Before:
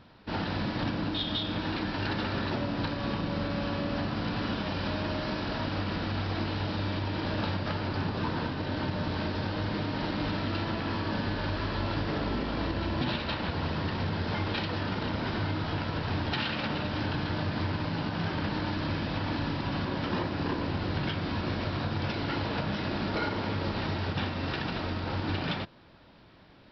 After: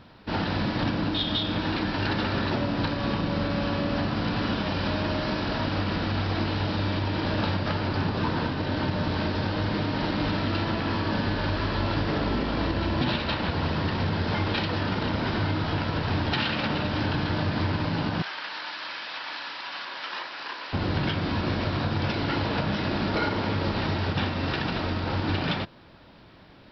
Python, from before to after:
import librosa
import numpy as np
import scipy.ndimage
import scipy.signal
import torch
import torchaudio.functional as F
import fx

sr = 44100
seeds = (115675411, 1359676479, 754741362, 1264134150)

y = fx.highpass(x, sr, hz=1200.0, slope=12, at=(18.22, 20.73))
y = y * 10.0 ** (4.5 / 20.0)